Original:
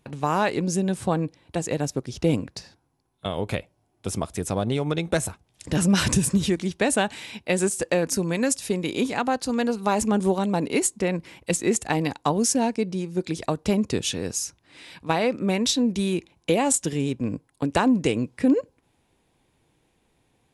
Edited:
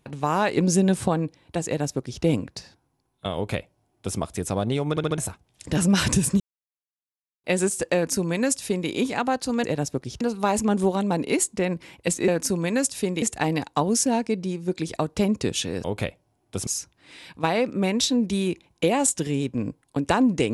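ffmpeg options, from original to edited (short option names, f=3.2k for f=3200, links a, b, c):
-filter_complex "[0:a]asplit=15[a][b][c][d][e][f][g][h][i][j][k][l][m][n][o];[a]atrim=end=0.572[p];[b]atrim=start=0.568:end=1.082,asetpts=PTS-STARTPTS,volume=4.5dB[q];[c]atrim=start=1.078:end=4.972[r];[d]atrim=start=4.898:end=4.972[s];[e]atrim=start=4.898:end=4.972[t];[f]atrim=start=4.898:end=4.972[u];[g]atrim=start=5.178:end=6.4,asetpts=PTS-STARTPTS,afade=t=out:st=1.218:d=0.004:c=hsin[v];[h]atrim=start=6.4:end=7.44,asetpts=PTS-STARTPTS,volume=0[w];[i]atrim=start=7.44:end=9.642,asetpts=PTS-STARTPTS,afade=t=in:d=0.004:c=hsin[x];[j]atrim=start=1.658:end=2.232[y];[k]atrim=start=9.638:end=11.712[z];[l]atrim=start=7.948:end=8.892[aa];[m]atrim=start=11.708:end=14.332[ab];[n]atrim=start=3.348:end=4.182[ac];[o]atrim=start=14.328[ad];[p][q]acrossfade=d=0.004:c1=hsin:c2=hsin[ae];[ae][r]acrossfade=d=0.004:c1=hsin:c2=hsin[af];[af][s]acrossfade=d=0.004:c1=hsin:c2=hsin[ag];[ag][t]acrossfade=d=0.004:c1=hsin:c2=hsin[ah];[ah][u]acrossfade=d=0.004:c1=hsin:c2=hsin[ai];[v][w][x]concat=n=3:v=0:a=1[aj];[ai][aj]acrossfade=d=0.004:c1=hsin:c2=hsin[ak];[ak][y]acrossfade=d=0.004:c1=hsin:c2=hsin[al];[al][z]acrossfade=d=0.004:c1=hsin:c2=hsin[am];[am][aa]acrossfade=d=0.004:c1=hsin:c2=hsin[an];[an][ab]acrossfade=d=0.004:c1=hsin:c2=hsin[ao];[ao][ac]acrossfade=d=0.004:c1=hsin:c2=hsin[ap];[ap][ad]acrossfade=d=0.004:c1=hsin:c2=hsin"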